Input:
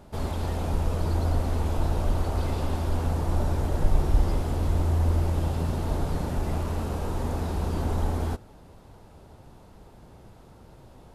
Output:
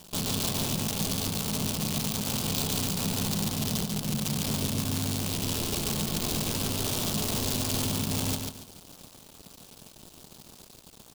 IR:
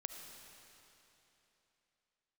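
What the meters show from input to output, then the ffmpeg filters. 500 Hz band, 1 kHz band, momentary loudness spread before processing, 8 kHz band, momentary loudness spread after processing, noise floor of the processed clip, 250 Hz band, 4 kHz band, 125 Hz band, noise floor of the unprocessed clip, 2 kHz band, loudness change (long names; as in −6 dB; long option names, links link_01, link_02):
−4.0 dB, −4.0 dB, 5 LU, +16.0 dB, 20 LU, −53 dBFS, +2.0 dB, +14.0 dB, −6.0 dB, −51 dBFS, +3.5 dB, −0.5 dB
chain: -filter_complex "[0:a]aecho=1:1:4.4:0.31,acompressor=threshold=-27dB:ratio=6,aresample=11025,aresample=44100,acrusher=bits=7:dc=4:mix=0:aa=0.000001,asoftclip=type=tanh:threshold=-27dB,aeval=exprs='val(0)*sin(2*PI*180*n/s)':channel_layout=same,aeval=exprs='sgn(val(0))*max(abs(val(0))-0.00126,0)':channel_layout=same,asplit=2[link_01][link_02];[link_02]aecho=0:1:142|284|426|568:0.596|0.167|0.0467|0.0131[link_03];[link_01][link_03]amix=inputs=2:normalize=0,aexciter=amount=5.4:drive=4.3:freq=2700,volume=3.5dB"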